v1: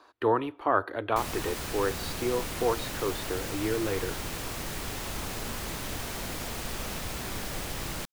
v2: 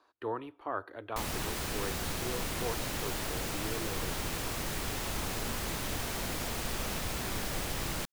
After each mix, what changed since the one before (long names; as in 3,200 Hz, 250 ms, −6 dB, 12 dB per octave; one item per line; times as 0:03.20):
speech −11.0 dB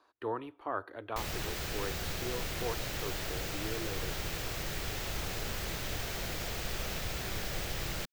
background: add graphic EQ with 15 bands 250 Hz −8 dB, 1,000 Hz −6 dB, 10,000 Hz −8 dB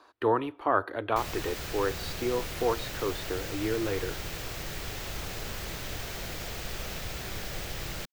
speech +10.5 dB